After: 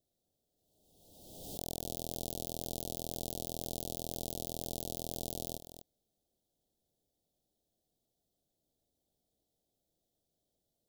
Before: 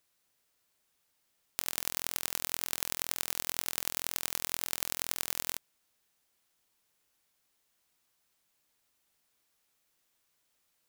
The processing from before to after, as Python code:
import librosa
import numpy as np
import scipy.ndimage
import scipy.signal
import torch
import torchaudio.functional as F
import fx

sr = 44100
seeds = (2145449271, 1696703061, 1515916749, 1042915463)

y = fx.level_steps(x, sr, step_db=10)
y = scipy.signal.sosfilt(scipy.signal.ellip(3, 1.0, 40, [720.0, 3400.0], 'bandstop', fs=sr, output='sos'), y)
y = fx.tilt_shelf(y, sr, db=8.0, hz=1400.0)
y = y + 10.0 ** (-11.5 / 20.0) * np.pad(y, (int(247 * sr / 1000.0), 0))[:len(y)]
y = fx.pre_swell(y, sr, db_per_s=39.0)
y = y * librosa.db_to_amplitude(1.0)